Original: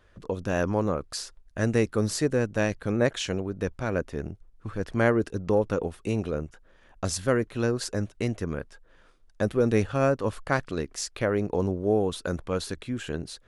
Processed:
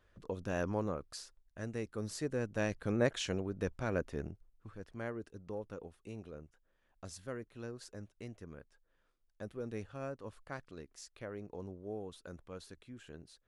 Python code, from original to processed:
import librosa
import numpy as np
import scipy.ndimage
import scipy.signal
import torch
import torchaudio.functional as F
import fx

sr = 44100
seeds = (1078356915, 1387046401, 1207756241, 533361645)

y = fx.gain(x, sr, db=fx.line((0.77, -9.5), (1.73, -17.0), (2.85, -7.0), (4.21, -7.0), (4.9, -19.0)))